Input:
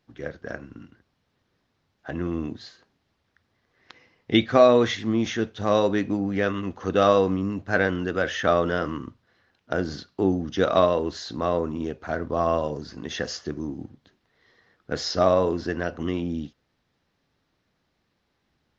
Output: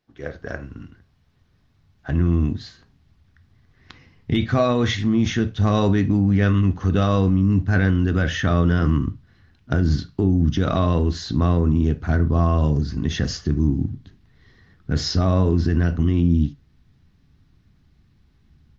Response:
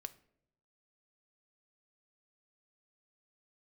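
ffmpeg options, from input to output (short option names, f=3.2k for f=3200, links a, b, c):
-filter_complex "[0:a]asubboost=boost=11:cutoff=160,alimiter=limit=-12.5dB:level=0:latency=1:release=35,dynaudnorm=f=140:g=3:m=8dB[a];[1:a]atrim=start_sample=2205,atrim=end_sample=3528[b];[a][b]afir=irnorm=-1:irlink=0"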